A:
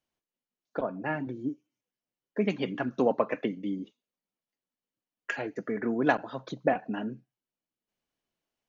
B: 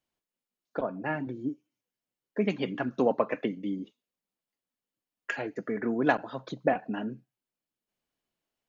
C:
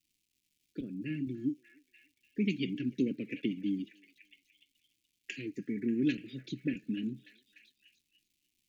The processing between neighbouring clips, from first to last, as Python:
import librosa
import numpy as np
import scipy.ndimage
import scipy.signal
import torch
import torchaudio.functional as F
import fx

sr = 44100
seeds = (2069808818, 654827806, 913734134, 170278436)

y1 = fx.notch(x, sr, hz=5900.0, q=18.0)
y2 = fx.dmg_crackle(y1, sr, seeds[0], per_s=350.0, level_db=-61.0)
y2 = scipy.signal.sosfilt(scipy.signal.ellip(3, 1.0, 70, [330.0, 2400.0], 'bandstop', fs=sr, output='sos'), y2)
y2 = fx.echo_stepped(y2, sr, ms=294, hz=930.0, octaves=0.7, feedback_pct=70, wet_db=-7.5)